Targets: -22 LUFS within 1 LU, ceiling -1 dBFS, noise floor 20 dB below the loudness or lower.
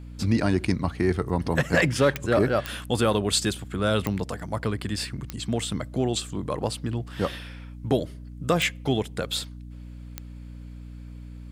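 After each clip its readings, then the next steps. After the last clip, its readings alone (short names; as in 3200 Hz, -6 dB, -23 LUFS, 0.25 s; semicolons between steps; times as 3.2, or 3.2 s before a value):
clicks 6; hum 60 Hz; harmonics up to 300 Hz; hum level -39 dBFS; loudness -26.0 LUFS; peak -9.0 dBFS; loudness target -22.0 LUFS
-> de-click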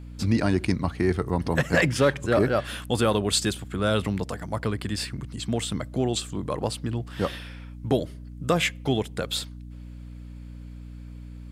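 clicks 0; hum 60 Hz; harmonics up to 300 Hz; hum level -39 dBFS
-> de-hum 60 Hz, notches 5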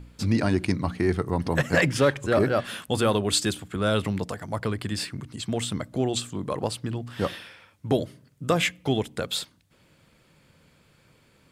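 hum none; loudness -26.5 LUFS; peak -8.5 dBFS; loudness target -22.0 LUFS
-> gain +4.5 dB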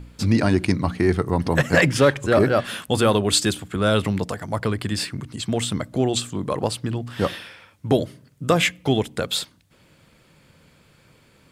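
loudness -22.0 LUFS; peak -4.0 dBFS; noise floor -57 dBFS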